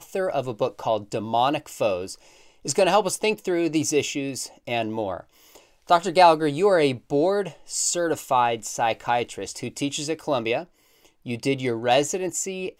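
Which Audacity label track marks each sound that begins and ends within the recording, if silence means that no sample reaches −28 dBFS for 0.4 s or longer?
2.650000	5.200000	sound
5.890000	10.620000	sound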